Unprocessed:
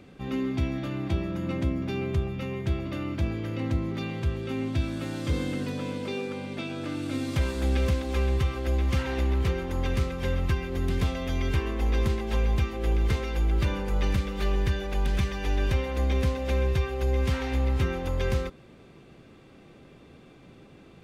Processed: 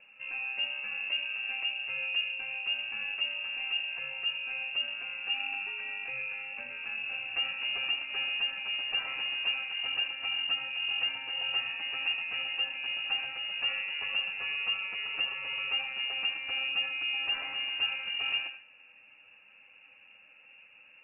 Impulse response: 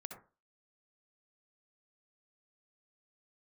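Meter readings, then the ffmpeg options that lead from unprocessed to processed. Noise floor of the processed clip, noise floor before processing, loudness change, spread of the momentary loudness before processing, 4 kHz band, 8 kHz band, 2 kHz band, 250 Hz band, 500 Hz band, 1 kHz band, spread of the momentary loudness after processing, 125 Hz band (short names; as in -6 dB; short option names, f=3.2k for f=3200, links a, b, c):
-58 dBFS, -52 dBFS, -2.5 dB, 6 LU, +11.5 dB, under -35 dB, +7.5 dB, under -30 dB, -22.0 dB, -8.0 dB, 4 LU, under -35 dB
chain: -filter_complex "[0:a]asplit=2[a][b];[1:a]atrim=start_sample=2205,adelay=10[c];[b][c]afir=irnorm=-1:irlink=0,volume=0.5dB[d];[a][d]amix=inputs=2:normalize=0,lowpass=f=2.5k:t=q:w=0.5098,lowpass=f=2.5k:t=q:w=0.6013,lowpass=f=2.5k:t=q:w=0.9,lowpass=f=2.5k:t=q:w=2.563,afreqshift=-2900,volume=-7.5dB"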